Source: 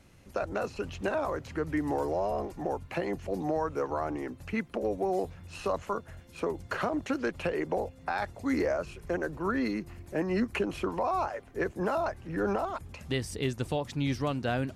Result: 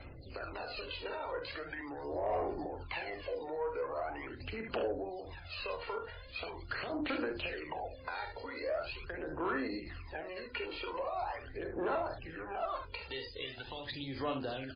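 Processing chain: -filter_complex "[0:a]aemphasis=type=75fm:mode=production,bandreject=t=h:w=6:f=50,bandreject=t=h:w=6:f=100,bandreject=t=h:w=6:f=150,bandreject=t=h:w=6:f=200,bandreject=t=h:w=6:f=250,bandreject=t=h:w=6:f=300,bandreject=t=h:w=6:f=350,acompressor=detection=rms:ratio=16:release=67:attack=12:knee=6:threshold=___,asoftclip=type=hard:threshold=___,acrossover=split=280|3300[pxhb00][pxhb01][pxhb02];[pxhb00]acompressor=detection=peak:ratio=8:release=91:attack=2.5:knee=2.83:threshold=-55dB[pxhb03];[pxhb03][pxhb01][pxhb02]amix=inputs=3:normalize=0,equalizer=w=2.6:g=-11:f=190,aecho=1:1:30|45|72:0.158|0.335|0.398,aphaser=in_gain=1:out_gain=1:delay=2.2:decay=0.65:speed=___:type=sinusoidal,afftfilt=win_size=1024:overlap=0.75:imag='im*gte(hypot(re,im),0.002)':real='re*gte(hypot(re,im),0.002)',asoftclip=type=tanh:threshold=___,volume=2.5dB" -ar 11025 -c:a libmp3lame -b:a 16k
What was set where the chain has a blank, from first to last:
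-40dB, -28dB, 0.42, -27.5dB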